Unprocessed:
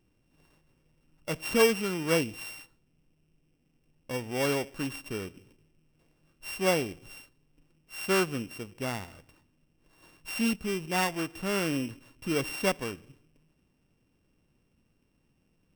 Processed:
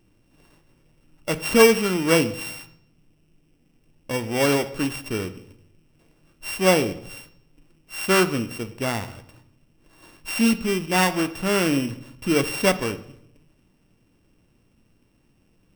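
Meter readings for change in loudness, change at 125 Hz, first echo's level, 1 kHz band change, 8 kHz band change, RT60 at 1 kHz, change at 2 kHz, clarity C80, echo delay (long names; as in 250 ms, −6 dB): +8.0 dB, +8.0 dB, no echo audible, +8.0 dB, +8.5 dB, 0.65 s, +8.0 dB, 18.5 dB, no echo audible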